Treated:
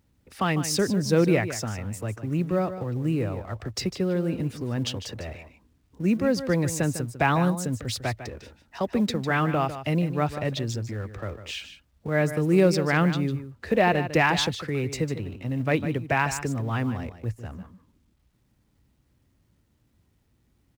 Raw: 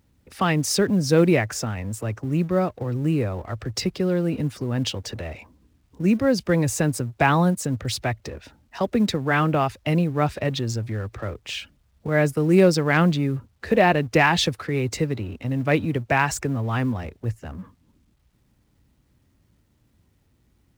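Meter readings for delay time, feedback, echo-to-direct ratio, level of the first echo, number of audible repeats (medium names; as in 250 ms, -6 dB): 151 ms, no regular repeats, -11.5 dB, -11.5 dB, 1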